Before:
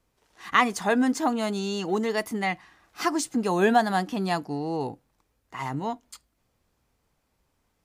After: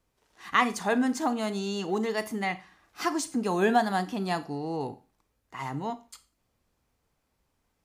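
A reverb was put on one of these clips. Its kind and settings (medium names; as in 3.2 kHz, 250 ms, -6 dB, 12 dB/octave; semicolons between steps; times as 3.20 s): Schroeder reverb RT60 0.34 s, combs from 29 ms, DRR 13 dB; trim -3 dB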